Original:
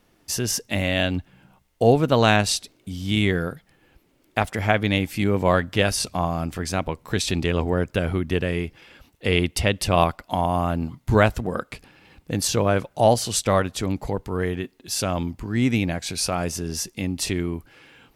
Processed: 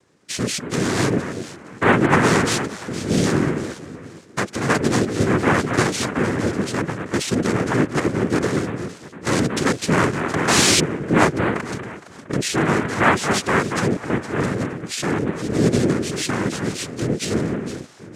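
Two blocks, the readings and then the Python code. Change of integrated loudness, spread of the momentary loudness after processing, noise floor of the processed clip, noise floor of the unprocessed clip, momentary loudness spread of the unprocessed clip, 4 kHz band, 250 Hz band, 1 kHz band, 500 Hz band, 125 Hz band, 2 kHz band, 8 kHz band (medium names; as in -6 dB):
+2.5 dB, 12 LU, -42 dBFS, -63 dBFS, 10 LU, +2.0 dB, +5.0 dB, +2.5 dB, +1.0 dB, +1.5 dB, +5.0 dB, +3.5 dB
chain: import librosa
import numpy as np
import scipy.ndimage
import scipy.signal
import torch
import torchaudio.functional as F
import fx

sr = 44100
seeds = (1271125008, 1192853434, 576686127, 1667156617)

y = fx.peak_eq(x, sr, hz=180.0, db=7.5, octaves=0.73)
y = fx.echo_alternate(y, sr, ms=232, hz=980.0, feedback_pct=51, wet_db=-6.5)
y = fx.spec_paint(y, sr, seeds[0], shape='rise', start_s=10.47, length_s=0.33, low_hz=1500.0, high_hz=5000.0, level_db=-18.0)
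y = fx.noise_vocoder(y, sr, seeds[1], bands=3)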